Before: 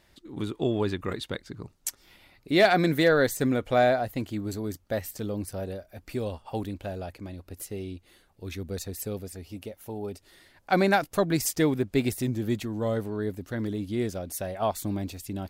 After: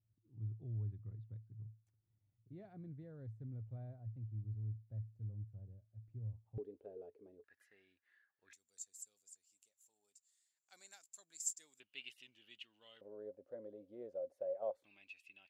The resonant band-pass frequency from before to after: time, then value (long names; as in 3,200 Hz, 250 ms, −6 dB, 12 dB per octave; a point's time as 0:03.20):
resonant band-pass, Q 16
110 Hz
from 0:06.58 430 Hz
from 0:07.44 1,700 Hz
from 0:08.53 7,300 Hz
from 0:11.80 2,900 Hz
from 0:13.01 540 Hz
from 0:14.84 2,600 Hz